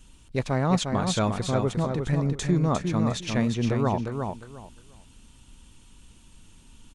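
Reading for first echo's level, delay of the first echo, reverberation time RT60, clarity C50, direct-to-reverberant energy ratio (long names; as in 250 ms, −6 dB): −5.5 dB, 354 ms, no reverb audible, no reverb audible, no reverb audible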